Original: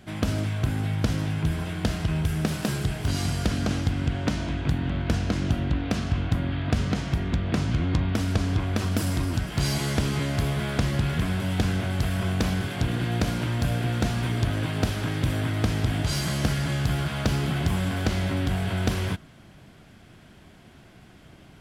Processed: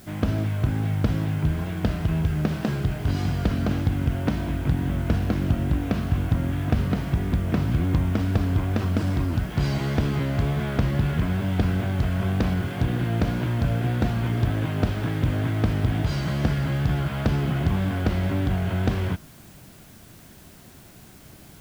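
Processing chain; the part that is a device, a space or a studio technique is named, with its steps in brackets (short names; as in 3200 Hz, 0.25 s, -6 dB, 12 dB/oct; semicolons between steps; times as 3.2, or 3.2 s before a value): cassette deck with a dirty head (tape spacing loss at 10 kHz 22 dB; wow and flutter; white noise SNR 29 dB); gain +2.5 dB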